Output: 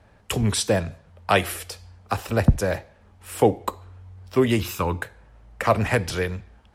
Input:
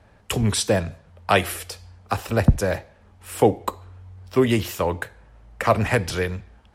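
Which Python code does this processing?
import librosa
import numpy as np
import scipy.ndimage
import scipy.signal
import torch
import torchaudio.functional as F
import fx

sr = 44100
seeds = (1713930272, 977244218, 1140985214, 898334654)

y = fx.comb(x, sr, ms=0.8, depth=0.54, at=(4.61, 5.02))
y = y * librosa.db_to_amplitude(-1.0)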